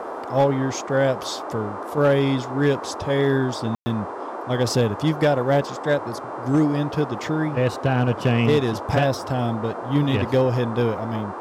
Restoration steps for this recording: clip repair -11.5 dBFS; de-hum 396 Hz, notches 27; room tone fill 3.75–3.86; noise print and reduce 30 dB

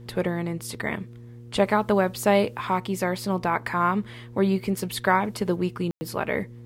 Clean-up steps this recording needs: de-hum 118.6 Hz, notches 4; room tone fill 5.91–6.01

